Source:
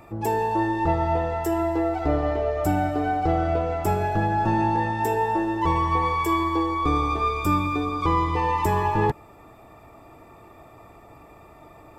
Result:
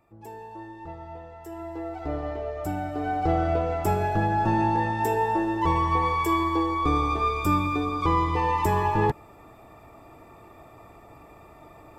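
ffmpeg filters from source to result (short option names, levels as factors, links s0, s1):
-af "volume=0.891,afade=t=in:st=1.38:d=0.78:silence=0.316228,afade=t=in:st=2.86:d=0.45:silence=0.473151"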